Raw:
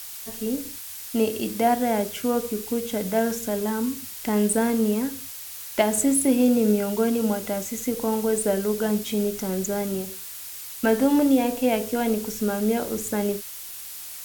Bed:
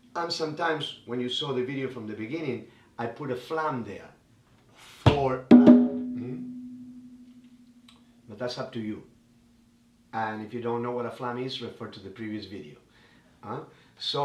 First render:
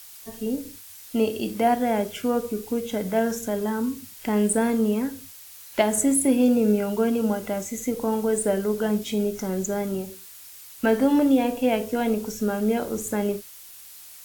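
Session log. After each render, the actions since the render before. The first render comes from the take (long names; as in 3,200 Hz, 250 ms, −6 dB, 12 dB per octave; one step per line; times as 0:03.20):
noise reduction from a noise print 7 dB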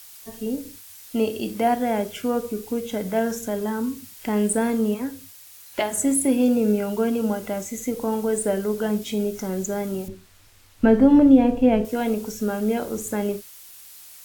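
0:04.94–0:06.05: notch comb filter 220 Hz
0:10.08–0:11.85: RIAA equalisation playback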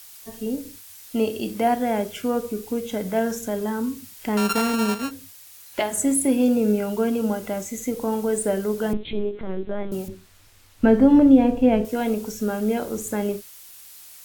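0:04.37–0:05.11: samples sorted by size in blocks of 32 samples
0:08.93–0:09.92: linear-prediction vocoder at 8 kHz pitch kept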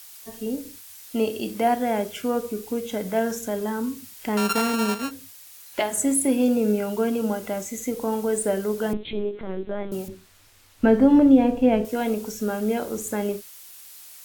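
low-shelf EQ 160 Hz −5.5 dB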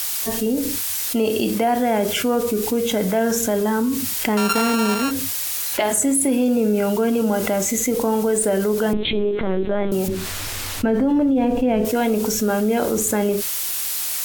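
brickwall limiter −13 dBFS, peak gain reduction 7.5 dB
envelope flattener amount 70%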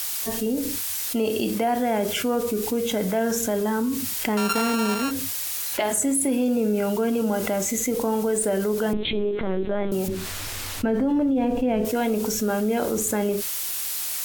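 level −4 dB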